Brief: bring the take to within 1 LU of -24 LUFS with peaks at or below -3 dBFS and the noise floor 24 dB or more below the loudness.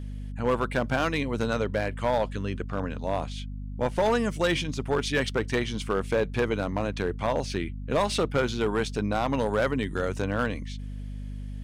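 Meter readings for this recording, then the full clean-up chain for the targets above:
clipped 1.3%; flat tops at -18.0 dBFS; hum 50 Hz; harmonics up to 250 Hz; hum level -33 dBFS; loudness -28.0 LUFS; peak -18.0 dBFS; loudness target -24.0 LUFS
-> clip repair -18 dBFS; de-hum 50 Hz, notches 5; gain +4 dB

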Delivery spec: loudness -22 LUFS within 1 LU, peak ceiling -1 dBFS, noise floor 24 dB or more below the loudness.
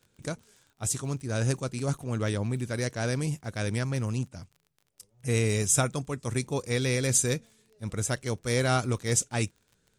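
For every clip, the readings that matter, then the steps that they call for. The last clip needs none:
ticks 37/s; loudness -29.0 LUFS; peak -9.5 dBFS; loudness target -22.0 LUFS
-> de-click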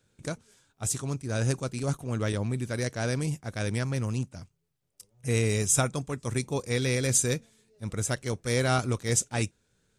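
ticks 0.10/s; loudness -29.0 LUFS; peak -9.5 dBFS; loudness target -22.0 LUFS
-> gain +7 dB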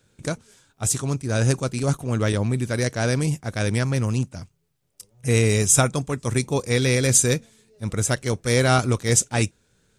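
loudness -22.0 LUFS; peak -2.5 dBFS; noise floor -67 dBFS

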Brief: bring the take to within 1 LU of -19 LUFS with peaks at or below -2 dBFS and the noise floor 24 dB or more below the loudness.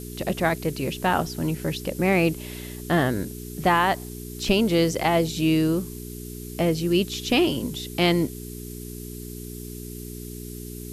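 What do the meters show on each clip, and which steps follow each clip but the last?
hum 60 Hz; harmonics up to 420 Hz; hum level -36 dBFS; noise floor -37 dBFS; noise floor target -48 dBFS; loudness -23.5 LUFS; peak -8.5 dBFS; loudness target -19.0 LUFS
-> de-hum 60 Hz, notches 7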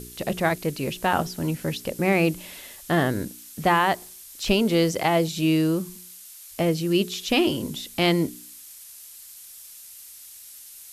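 hum none; noise floor -45 dBFS; noise floor target -48 dBFS
-> denoiser 6 dB, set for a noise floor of -45 dBFS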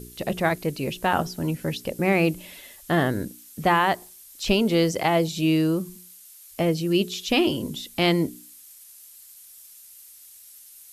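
noise floor -48 dBFS; loudness -24.0 LUFS; peak -8.5 dBFS; loudness target -19.0 LUFS
-> gain +5 dB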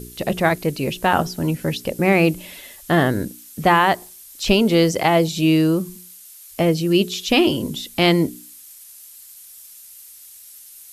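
loudness -19.0 LUFS; peak -3.5 dBFS; noise floor -43 dBFS

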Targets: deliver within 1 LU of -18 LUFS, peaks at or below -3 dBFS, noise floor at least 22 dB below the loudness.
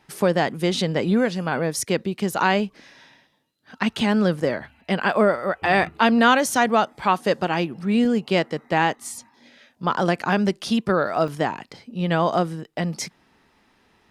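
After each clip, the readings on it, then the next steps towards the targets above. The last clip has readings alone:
dropouts 1; longest dropout 2.1 ms; loudness -22.0 LUFS; peak -3.0 dBFS; loudness target -18.0 LUFS
-> interpolate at 11.28, 2.1 ms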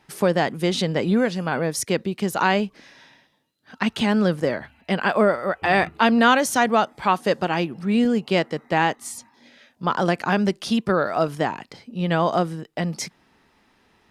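dropouts 0; loudness -22.0 LUFS; peak -3.0 dBFS; loudness target -18.0 LUFS
-> gain +4 dB; limiter -3 dBFS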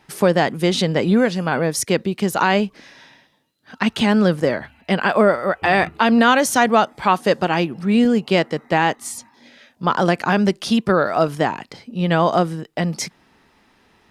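loudness -18.5 LUFS; peak -3.0 dBFS; noise floor -58 dBFS

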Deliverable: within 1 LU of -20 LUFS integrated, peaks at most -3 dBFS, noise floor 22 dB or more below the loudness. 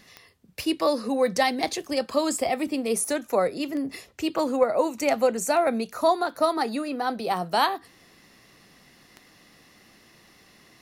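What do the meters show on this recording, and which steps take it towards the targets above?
clicks 6; loudness -25.5 LUFS; peak -9.5 dBFS; loudness target -20.0 LUFS
-> de-click; gain +5.5 dB

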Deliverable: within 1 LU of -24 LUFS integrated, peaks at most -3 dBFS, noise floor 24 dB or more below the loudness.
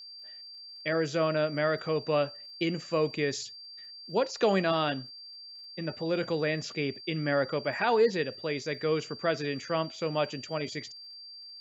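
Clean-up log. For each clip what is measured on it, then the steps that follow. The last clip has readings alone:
ticks 37/s; steady tone 4700 Hz; tone level -44 dBFS; loudness -30.0 LUFS; peak -14.0 dBFS; loudness target -24.0 LUFS
-> de-click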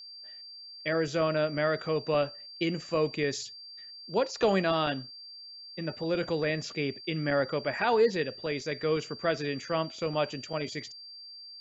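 ticks 0.17/s; steady tone 4700 Hz; tone level -44 dBFS
-> notch 4700 Hz, Q 30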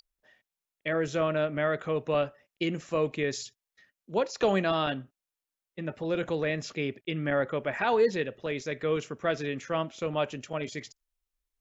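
steady tone none; loudness -30.0 LUFS; peak -14.0 dBFS; loudness target -24.0 LUFS
-> gain +6 dB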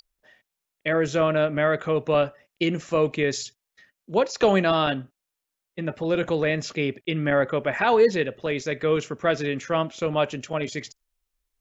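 loudness -24.0 LUFS; peak -8.0 dBFS; noise floor -84 dBFS

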